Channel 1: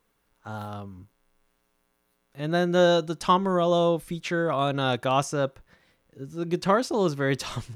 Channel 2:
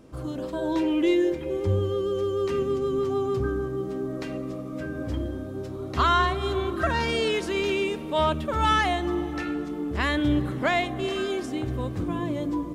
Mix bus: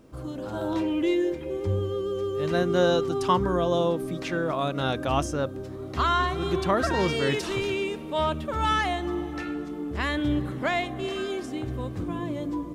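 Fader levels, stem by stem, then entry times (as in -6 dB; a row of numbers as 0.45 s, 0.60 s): -2.5 dB, -2.5 dB; 0.00 s, 0.00 s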